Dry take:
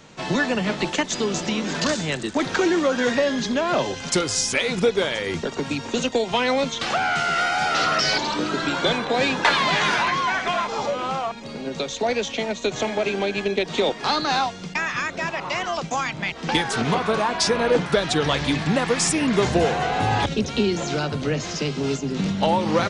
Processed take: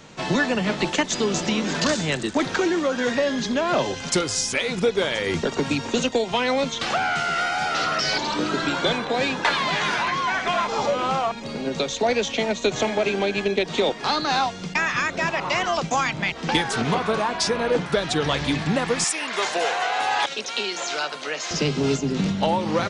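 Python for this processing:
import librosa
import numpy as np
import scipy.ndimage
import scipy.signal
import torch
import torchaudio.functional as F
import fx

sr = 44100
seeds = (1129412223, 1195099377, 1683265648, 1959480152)

y = fx.highpass(x, sr, hz=780.0, slope=12, at=(19.04, 21.51))
y = fx.rider(y, sr, range_db=3, speed_s=0.5)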